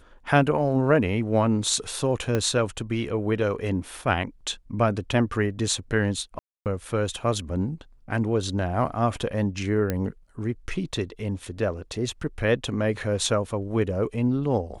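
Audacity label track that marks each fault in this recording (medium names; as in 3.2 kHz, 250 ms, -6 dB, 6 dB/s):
2.350000	2.350000	pop -12 dBFS
6.390000	6.660000	dropout 268 ms
9.900000	9.900000	pop -12 dBFS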